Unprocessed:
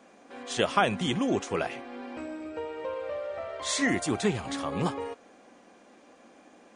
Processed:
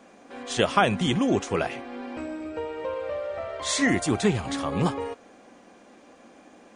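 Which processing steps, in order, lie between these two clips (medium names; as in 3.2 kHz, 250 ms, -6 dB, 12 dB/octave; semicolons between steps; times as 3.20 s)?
bass shelf 130 Hz +6.5 dB; trim +3 dB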